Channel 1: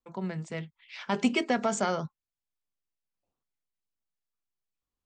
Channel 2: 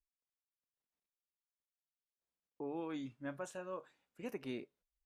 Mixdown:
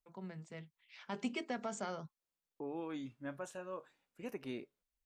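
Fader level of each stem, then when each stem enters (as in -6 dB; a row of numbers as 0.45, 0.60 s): -13.0, -0.5 dB; 0.00, 0.00 s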